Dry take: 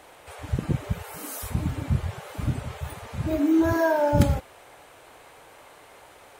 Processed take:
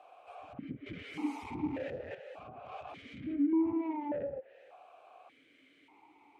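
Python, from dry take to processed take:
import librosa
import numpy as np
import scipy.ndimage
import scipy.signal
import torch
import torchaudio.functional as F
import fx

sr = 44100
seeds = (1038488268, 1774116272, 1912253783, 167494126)

y = fx.zero_step(x, sr, step_db=-36.0, at=(2.66, 4.1))
y = fx.env_lowpass_down(y, sr, base_hz=840.0, full_db=-19.5)
y = fx.leveller(y, sr, passes=3, at=(0.86, 2.15))
y = 10.0 ** (-21.5 / 20.0) * np.tanh(y / 10.0 ** (-21.5 / 20.0))
y = fx.vowel_held(y, sr, hz=1.7)
y = F.gain(torch.from_numpy(y), 1.5).numpy()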